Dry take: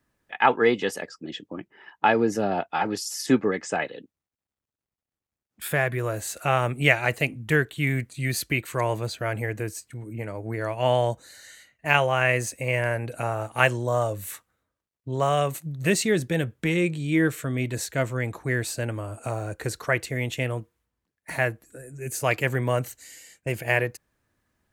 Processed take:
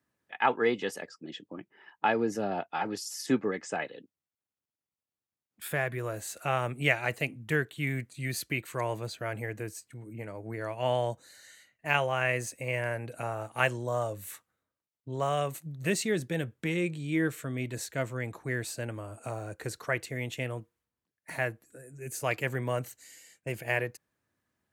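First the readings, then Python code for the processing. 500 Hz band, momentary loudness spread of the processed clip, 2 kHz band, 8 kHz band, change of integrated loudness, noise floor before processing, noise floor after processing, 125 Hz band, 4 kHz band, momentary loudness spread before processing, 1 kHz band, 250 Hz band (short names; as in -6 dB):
-6.5 dB, 14 LU, -6.5 dB, -6.5 dB, -6.5 dB, under -85 dBFS, under -85 dBFS, -7.5 dB, -6.5 dB, 14 LU, -6.5 dB, -6.5 dB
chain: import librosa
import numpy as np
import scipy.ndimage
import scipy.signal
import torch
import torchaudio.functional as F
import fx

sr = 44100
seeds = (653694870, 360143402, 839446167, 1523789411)

y = scipy.signal.sosfilt(scipy.signal.butter(2, 94.0, 'highpass', fs=sr, output='sos'), x)
y = y * 10.0 ** (-6.5 / 20.0)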